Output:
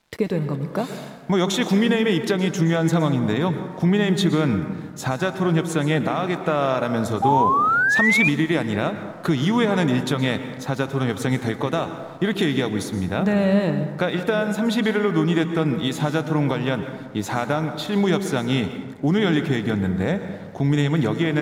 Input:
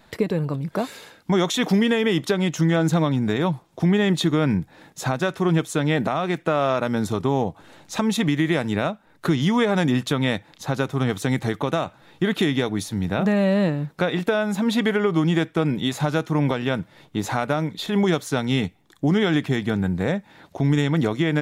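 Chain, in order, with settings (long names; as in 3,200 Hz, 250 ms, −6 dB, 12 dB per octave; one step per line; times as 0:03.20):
dense smooth reverb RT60 1.8 s, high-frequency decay 0.35×, pre-delay 105 ms, DRR 8.5 dB
sound drawn into the spectrogram rise, 0:07.22–0:08.29, 780–2,500 Hz −18 dBFS
dead-zone distortion −51.5 dBFS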